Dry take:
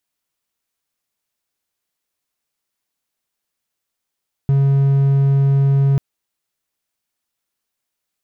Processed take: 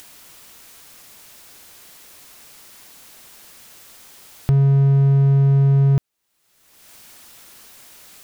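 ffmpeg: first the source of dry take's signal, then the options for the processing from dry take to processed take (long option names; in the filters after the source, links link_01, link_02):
-f lavfi -i "aevalsrc='0.355*(1-4*abs(mod(138*t+0.25,1)-0.5))':duration=1.49:sample_rate=44100"
-af "acompressor=mode=upward:threshold=-18dB:ratio=2.5"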